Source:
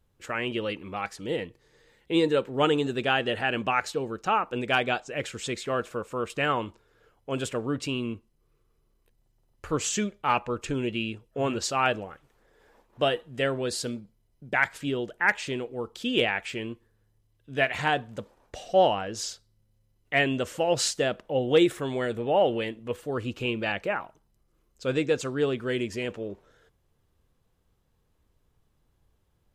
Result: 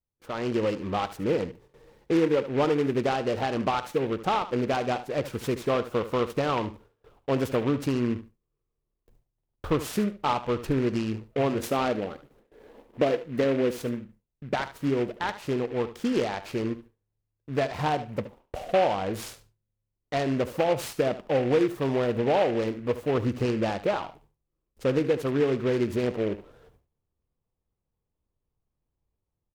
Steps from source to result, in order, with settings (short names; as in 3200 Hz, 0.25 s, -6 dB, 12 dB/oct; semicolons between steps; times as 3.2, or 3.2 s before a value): 11.59–13.71 graphic EQ 250/500/1000/2000/4000/8000 Hz +9/+6/-4/+11/-10/+10 dB; AGC gain up to 9.5 dB; gate with hold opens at -43 dBFS; compressor 3:1, threshold -21 dBFS, peak gain reduction 10.5 dB; band shelf 3600 Hz -12.5 dB 2.8 oct; feedback echo 73 ms, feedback 16%, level -13.5 dB; noise-modulated delay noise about 1700 Hz, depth 0.05 ms; gain -1 dB